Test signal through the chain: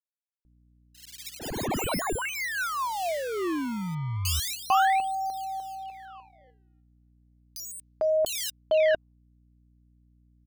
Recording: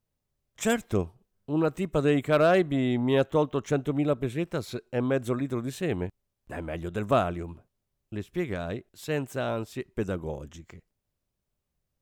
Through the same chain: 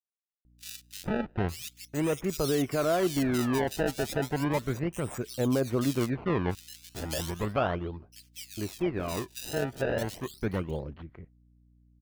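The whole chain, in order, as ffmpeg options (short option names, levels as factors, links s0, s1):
-filter_complex "[0:a]agate=range=0.0224:threshold=0.00501:ratio=3:detection=peak,lowpass=f=9900:w=0.5412,lowpass=f=9900:w=1.3066,alimiter=limit=0.119:level=0:latency=1:release=18,aphaser=in_gain=1:out_gain=1:delay=3:decay=0.24:speed=0.18:type=sinusoidal,acrusher=samples=23:mix=1:aa=0.000001:lfo=1:lforange=36.8:lforate=0.35,aeval=exprs='val(0)+0.001*(sin(2*PI*60*n/s)+sin(2*PI*2*60*n/s)/2+sin(2*PI*3*60*n/s)/3+sin(2*PI*4*60*n/s)/4+sin(2*PI*5*60*n/s)/5)':c=same,acrossover=split=2900[s0][s1];[s0]adelay=450[s2];[s2][s1]amix=inputs=2:normalize=0"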